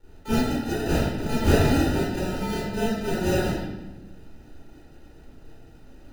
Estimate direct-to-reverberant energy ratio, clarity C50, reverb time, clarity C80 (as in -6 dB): -11.5 dB, -2.5 dB, 1.0 s, 1.5 dB